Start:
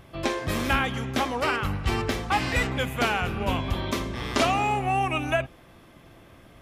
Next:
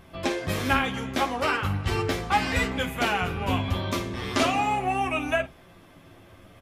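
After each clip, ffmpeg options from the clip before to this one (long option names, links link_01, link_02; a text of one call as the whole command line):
ffmpeg -i in.wav -af "aecho=1:1:11|52:0.562|0.178,flanger=delay=4.3:depth=5.1:regen=-64:speed=0.38:shape=sinusoidal,volume=3dB" out.wav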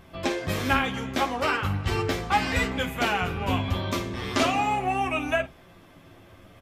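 ffmpeg -i in.wav -af "equalizer=frequency=10000:width=7.8:gain=-7" out.wav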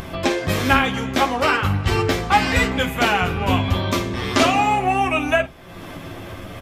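ffmpeg -i in.wav -af "acompressor=mode=upward:threshold=-30dB:ratio=2.5,volume=7dB" out.wav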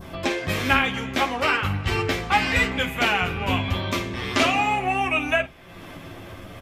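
ffmpeg -i in.wav -af "adynamicequalizer=threshold=0.02:dfrequency=2400:dqfactor=1.3:tfrequency=2400:tqfactor=1.3:attack=5:release=100:ratio=0.375:range=3:mode=boostabove:tftype=bell,volume=-5.5dB" out.wav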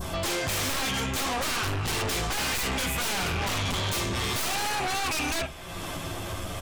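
ffmpeg -i in.wav -af "equalizer=frequency=125:width_type=o:width=1:gain=-4,equalizer=frequency=250:width_type=o:width=1:gain=-7,equalizer=frequency=500:width_type=o:width=1:gain=-4,equalizer=frequency=2000:width_type=o:width=1:gain=-7,equalizer=frequency=8000:width_type=o:width=1:gain=8,aeval=exprs='(tanh(20*val(0)+0.25)-tanh(0.25))/20':channel_layout=same,aeval=exprs='0.0631*sin(PI/2*2.51*val(0)/0.0631)':channel_layout=same,volume=-1.5dB" out.wav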